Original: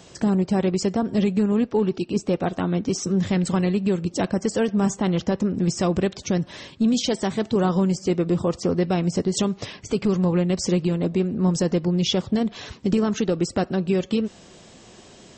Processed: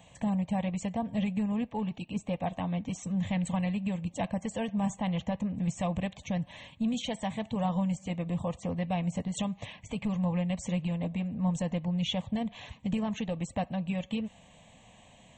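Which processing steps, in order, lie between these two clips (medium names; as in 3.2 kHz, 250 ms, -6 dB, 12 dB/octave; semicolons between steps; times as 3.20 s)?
static phaser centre 1.4 kHz, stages 6; trim -5 dB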